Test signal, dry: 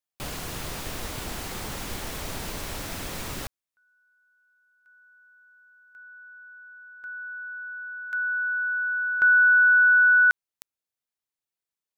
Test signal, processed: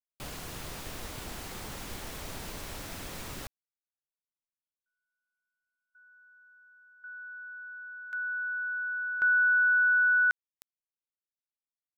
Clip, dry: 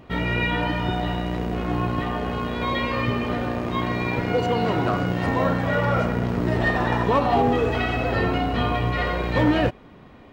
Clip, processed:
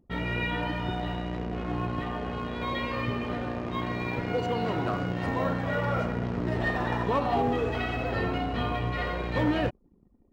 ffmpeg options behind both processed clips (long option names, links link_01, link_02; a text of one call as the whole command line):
ffmpeg -i in.wav -af "anlmdn=1,volume=-6.5dB" out.wav